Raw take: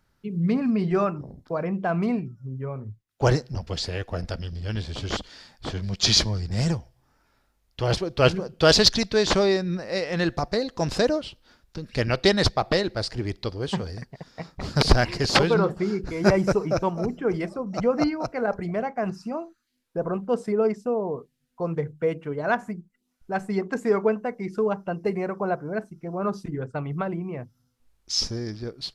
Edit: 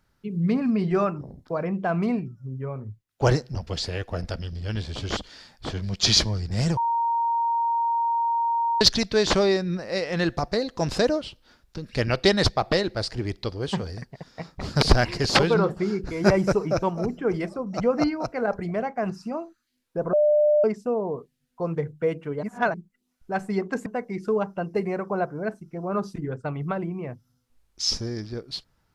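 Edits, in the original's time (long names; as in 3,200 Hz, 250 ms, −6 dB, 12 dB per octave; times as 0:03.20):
0:06.77–0:08.81: beep over 930 Hz −20.5 dBFS
0:20.13–0:20.64: beep over 598 Hz −15.5 dBFS
0:22.43–0:22.74: reverse
0:23.86–0:24.16: remove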